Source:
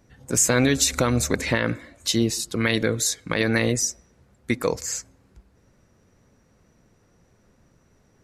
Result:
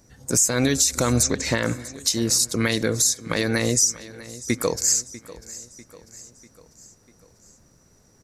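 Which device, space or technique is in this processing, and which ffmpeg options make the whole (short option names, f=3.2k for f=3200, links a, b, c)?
over-bright horn tweeter: -filter_complex "[0:a]asettb=1/sr,asplit=3[a][b][c];[a]atrim=end=1.234[d];[b]atrim=start=1.23:end=1.63,asetpts=PTS-STARTPTS,afade=t=in:d=0.004:c=qsin,afade=t=out:st=0.396:d=0.004:c=qsin,lowpass=f=7.3k:w=0.5412,lowpass=f=7.3k:w=1.3066[e];[c]atrim=start=1.626[f];[d][e]acrossfade=d=0.004:c1=hsin:c2=qsin[g];[g][f]acrossfade=d=0.004:c1=qsin:c2=hsin,highshelf=f=4.1k:t=q:w=1.5:g=8,alimiter=limit=-10dB:level=0:latency=1:release=296,aecho=1:1:645|1290|1935|2580:0.126|0.0667|0.0354|0.0187,volume=1.5dB"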